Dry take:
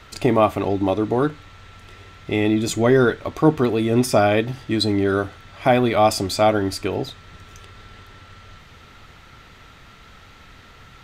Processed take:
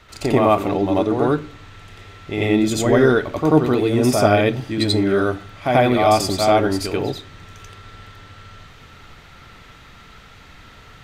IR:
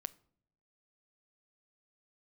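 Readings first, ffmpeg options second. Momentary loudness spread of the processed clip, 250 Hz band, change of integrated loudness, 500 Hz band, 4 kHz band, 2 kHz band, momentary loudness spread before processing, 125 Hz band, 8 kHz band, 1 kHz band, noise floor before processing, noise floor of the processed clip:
9 LU, +2.0 dB, +1.5 dB, +2.0 dB, +2.0 dB, +2.0 dB, 8 LU, +2.0 dB, +2.0 dB, +2.0 dB, -47 dBFS, -45 dBFS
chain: -filter_complex "[0:a]asplit=2[a][b];[1:a]atrim=start_sample=2205,adelay=87[c];[b][c]afir=irnorm=-1:irlink=0,volume=7.5dB[d];[a][d]amix=inputs=2:normalize=0,volume=-4dB"

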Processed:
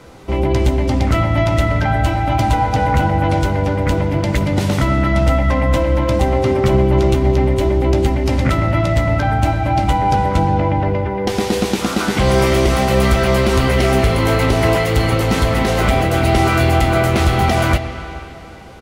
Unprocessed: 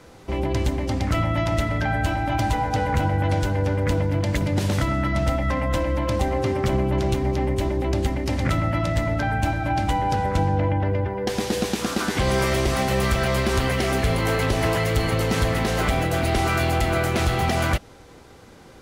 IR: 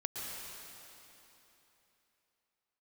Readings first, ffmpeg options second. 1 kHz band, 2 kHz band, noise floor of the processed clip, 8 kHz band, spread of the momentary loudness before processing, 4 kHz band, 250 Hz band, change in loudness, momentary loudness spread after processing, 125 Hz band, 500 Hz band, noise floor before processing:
+7.5 dB, +5.5 dB, -29 dBFS, +4.0 dB, 3 LU, +5.5 dB, +7.5 dB, +7.0 dB, 4 LU, +7.0 dB, +7.5 dB, -46 dBFS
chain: -filter_complex "[0:a]bandreject=f=1.7k:w=15,asplit=2[a][b];[b]adelay=15,volume=-11dB[c];[a][c]amix=inputs=2:normalize=0,asplit=2[d][e];[1:a]atrim=start_sample=2205,lowpass=4.5k[f];[e][f]afir=irnorm=-1:irlink=0,volume=-8.5dB[g];[d][g]amix=inputs=2:normalize=0,volume=4dB"

